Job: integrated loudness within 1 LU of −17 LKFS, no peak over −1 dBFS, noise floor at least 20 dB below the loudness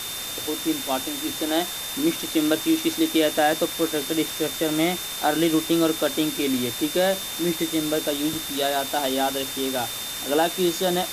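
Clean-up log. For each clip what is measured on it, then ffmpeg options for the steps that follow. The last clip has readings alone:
interfering tone 3,600 Hz; level of the tone −34 dBFS; background noise floor −32 dBFS; target noise floor −44 dBFS; integrated loudness −23.5 LKFS; sample peak −9.0 dBFS; target loudness −17.0 LKFS
→ -af "bandreject=frequency=3600:width=30"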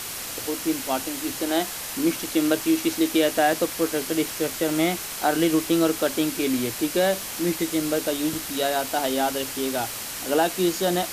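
interfering tone none found; background noise floor −34 dBFS; target noise floor −44 dBFS
→ -af "afftdn=noise_reduction=10:noise_floor=-34"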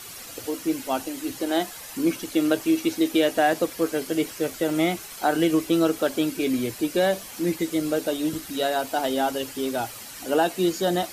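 background noise floor −40 dBFS; target noise floor −45 dBFS
→ -af "afftdn=noise_reduction=6:noise_floor=-40"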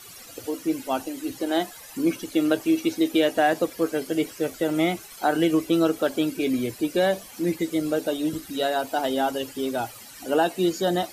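background noise floor −44 dBFS; target noise floor −45 dBFS
→ -af "afftdn=noise_reduction=6:noise_floor=-44"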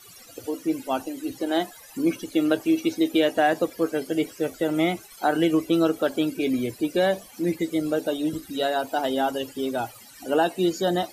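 background noise floor −48 dBFS; integrated loudness −25.0 LKFS; sample peak −10.0 dBFS; target loudness −17.0 LKFS
→ -af "volume=8dB"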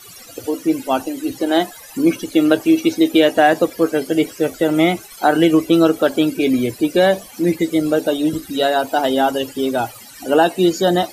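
integrated loudness −17.0 LKFS; sample peak −2.0 dBFS; background noise floor −40 dBFS

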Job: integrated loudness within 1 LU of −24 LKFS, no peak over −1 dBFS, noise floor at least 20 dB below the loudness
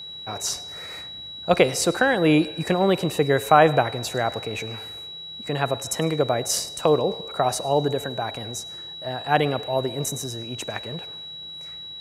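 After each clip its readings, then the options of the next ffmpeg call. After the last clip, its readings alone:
interfering tone 3,900 Hz; level of the tone −35 dBFS; integrated loudness −23.5 LKFS; sample peak −1.5 dBFS; target loudness −24.0 LKFS
→ -af "bandreject=frequency=3900:width=30"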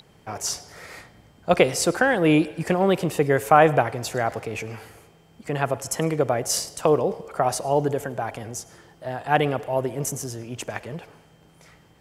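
interfering tone none found; integrated loudness −23.0 LKFS; sample peak −1.5 dBFS; target loudness −24.0 LKFS
→ -af "volume=-1dB"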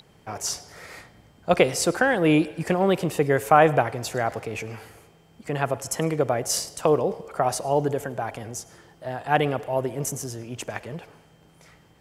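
integrated loudness −24.0 LKFS; sample peak −2.5 dBFS; background noise floor −56 dBFS

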